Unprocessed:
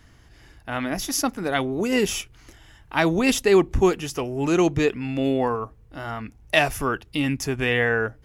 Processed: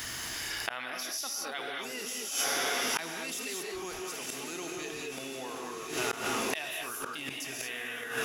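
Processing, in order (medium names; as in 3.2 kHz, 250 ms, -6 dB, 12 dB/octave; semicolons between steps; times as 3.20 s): fade out at the end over 0.63 s; time-frequency box 0.50–1.73 s, 320–6100 Hz +7 dB; on a send: echo that smears into a reverb 1029 ms, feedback 60%, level -11 dB; on the sum: gated-style reverb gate 250 ms rising, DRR -0.5 dB; inverted gate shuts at -14 dBFS, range -33 dB; tilt EQ +4 dB/octave; level flattener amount 70%; trim -8 dB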